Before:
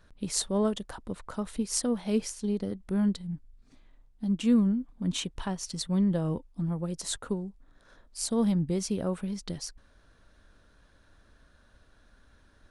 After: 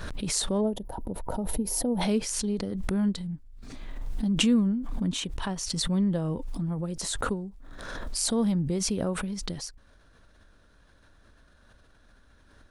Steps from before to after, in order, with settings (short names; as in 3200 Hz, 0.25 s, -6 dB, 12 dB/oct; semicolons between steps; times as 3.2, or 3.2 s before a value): spectral gain 0.61–2.01, 980–9900 Hz -16 dB; backwards sustainer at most 28 dB/s